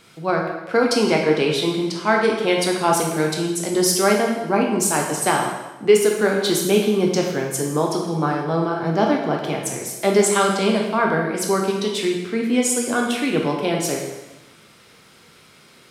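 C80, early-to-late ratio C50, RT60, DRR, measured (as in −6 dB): 6.0 dB, 3.5 dB, 1.1 s, −0.5 dB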